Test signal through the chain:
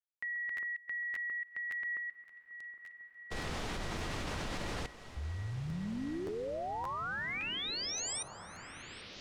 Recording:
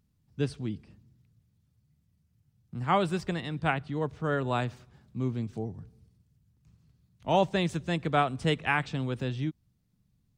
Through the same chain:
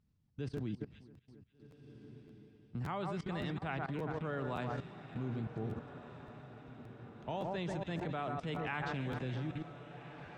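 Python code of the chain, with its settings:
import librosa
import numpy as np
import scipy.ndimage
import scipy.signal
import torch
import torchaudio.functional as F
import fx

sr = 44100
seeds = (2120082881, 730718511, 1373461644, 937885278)

p1 = fx.air_absorb(x, sr, metres=85.0)
p2 = fx.echo_alternate(p1, sr, ms=135, hz=1800.0, feedback_pct=73, wet_db=-9)
p3 = fx.level_steps(p2, sr, step_db=19)
p4 = p3 + fx.echo_diffused(p3, sr, ms=1543, feedback_pct=54, wet_db=-13, dry=0)
y = fx.buffer_crackle(p4, sr, first_s=0.56, period_s=0.57, block=512, kind='repeat')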